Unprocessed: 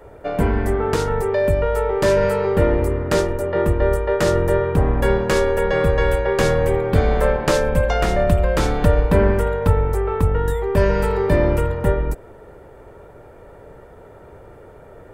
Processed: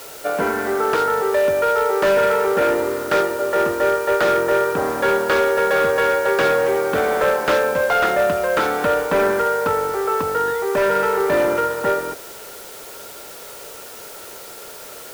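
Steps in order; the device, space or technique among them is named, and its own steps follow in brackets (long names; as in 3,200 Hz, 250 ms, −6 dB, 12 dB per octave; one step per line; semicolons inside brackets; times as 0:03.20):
drive-through speaker (band-pass filter 370–3,500 Hz; parametric band 1,400 Hz +9 dB 0.23 octaves; hard clipping −15 dBFS, distortion −16 dB; white noise bed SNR 19 dB)
level +3 dB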